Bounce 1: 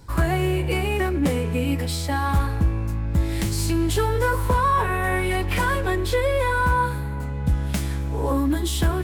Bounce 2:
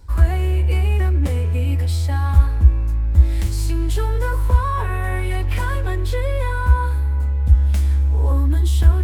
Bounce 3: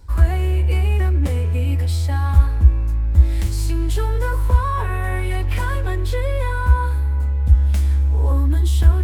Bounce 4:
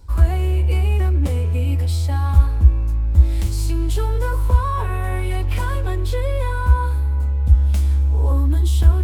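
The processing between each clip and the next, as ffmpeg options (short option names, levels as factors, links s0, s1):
-af "lowshelf=f=100:t=q:w=3:g=9.5,areverse,acompressor=mode=upward:threshold=0.282:ratio=2.5,areverse,volume=0.562"
-af anull
-af "equalizer=f=1800:w=2.7:g=-5.5"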